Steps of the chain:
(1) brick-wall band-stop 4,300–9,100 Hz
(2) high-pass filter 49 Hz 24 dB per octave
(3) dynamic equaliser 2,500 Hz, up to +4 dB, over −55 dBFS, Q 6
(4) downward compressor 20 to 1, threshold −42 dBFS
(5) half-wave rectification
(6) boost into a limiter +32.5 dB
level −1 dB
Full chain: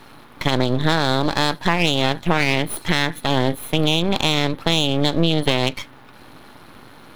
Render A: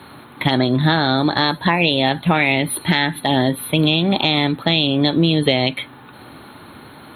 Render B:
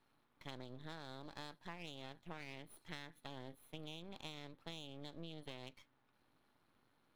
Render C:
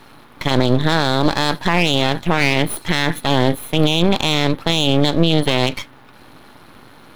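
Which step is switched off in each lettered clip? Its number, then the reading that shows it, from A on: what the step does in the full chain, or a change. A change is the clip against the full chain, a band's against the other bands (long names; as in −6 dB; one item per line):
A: 5, distortion level −3 dB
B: 6, change in crest factor +5.0 dB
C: 4, average gain reduction 5.5 dB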